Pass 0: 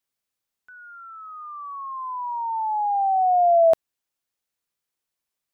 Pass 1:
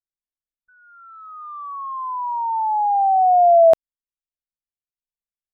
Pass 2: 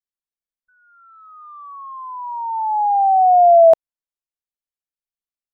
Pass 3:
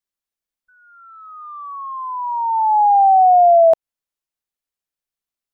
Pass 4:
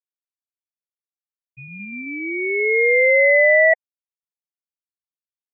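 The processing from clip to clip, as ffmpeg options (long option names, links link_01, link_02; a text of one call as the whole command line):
ffmpeg -i in.wav -af "anlmdn=25.1,volume=4.5dB" out.wav
ffmpeg -i in.wav -af "adynamicequalizer=threshold=0.0447:dfrequency=710:dqfactor=1.1:tfrequency=710:tqfactor=1.1:attack=5:release=100:ratio=0.375:range=3.5:mode=boostabove:tftype=bell,volume=-4.5dB" out.wav
ffmpeg -i in.wav -af "acompressor=threshold=-14dB:ratio=6,volume=5dB" out.wav
ffmpeg -i in.wav -af "afftfilt=real='re*gte(hypot(re,im),0.316)':imag='im*gte(hypot(re,im),0.316)':win_size=1024:overlap=0.75,aeval=exprs='val(0)*sin(2*PI*1300*n/s)':channel_layout=same" out.wav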